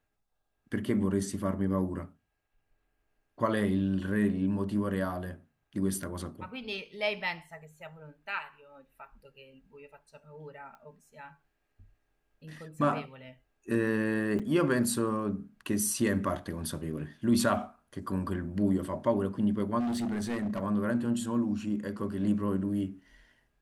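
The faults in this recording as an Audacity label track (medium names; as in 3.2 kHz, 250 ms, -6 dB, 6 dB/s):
6.030000	6.030000	dropout 3.2 ms
10.750000	10.750000	pop -39 dBFS
14.390000	14.400000	dropout 6.1 ms
19.790000	20.610000	clipped -28.5 dBFS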